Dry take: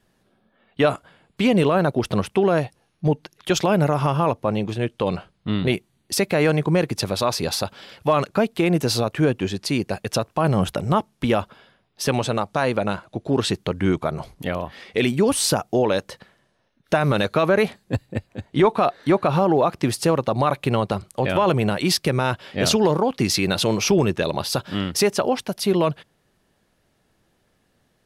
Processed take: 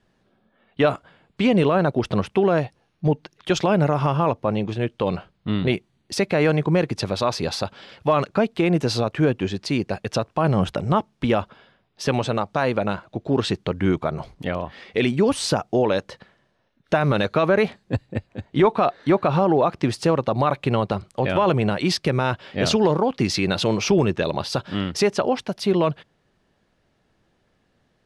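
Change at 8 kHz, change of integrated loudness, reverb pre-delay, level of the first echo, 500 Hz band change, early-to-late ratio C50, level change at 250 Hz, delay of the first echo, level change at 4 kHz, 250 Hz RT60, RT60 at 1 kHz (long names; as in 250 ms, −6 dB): −6.5 dB, −0.5 dB, no reverb audible, no echo audible, 0.0 dB, no reverb audible, 0.0 dB, no echo audible, −2.5 dB, no reverb audible, no reverb audible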